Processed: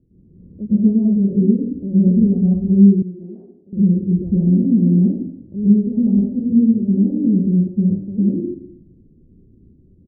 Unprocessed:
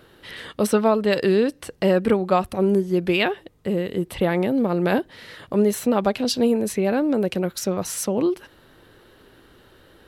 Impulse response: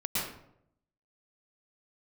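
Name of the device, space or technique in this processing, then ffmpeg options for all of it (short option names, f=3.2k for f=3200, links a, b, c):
next room: -filter_complex "[0:a]lowpass=f=270:w=0.5412,lowpass=f=270:w=1.3066[a];[1:a]atrim=start_sample=2205[b];[a][b]afir=irnorm=-1:irlink=0,asettb=1/sr,asplit=3[c][d][e];[c]atrim=end=3.024[f];[d]atrim=start=3.02:end=3.73,asetpts=PTS-STARTPTS,afade=t=in:d=0.004:c=qsin,afade=t=out:st=0.706:d=0.004:c=qsin,highpass=f=1.4k:p=1[g];[e]atrim=start=3.726[h];[f][g]acrossfade=d=0.004:c1=hsin:c2=qsin[i];[i][h]acrossfade=d=0.004:c1=qsin:c2=hsin,aecho=1:1:118:0.0668,volume=-1dB"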